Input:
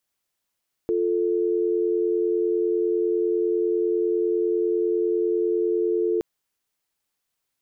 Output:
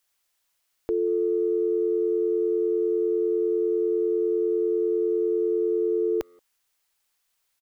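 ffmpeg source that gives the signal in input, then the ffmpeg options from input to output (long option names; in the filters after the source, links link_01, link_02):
-f lavfi -i "aevalsrc='0.075*(sin(2*PI*350*t)+sin(2*PI*440*t))':duration=5.32:sample_rate=44100"
-filter_complex "[0:a]equalizer=frequency=190:width=0.45:gain=-11.5,acontrast=51,asplit=2[link_01][link_02];[link_02]adelay=180,highpass=300,lowpass=3400,asoftclip=type=hard:threshold=-27dB,volume=-26dB[link_03];[link_01][link_03]amix=inputs=2:normalize=0"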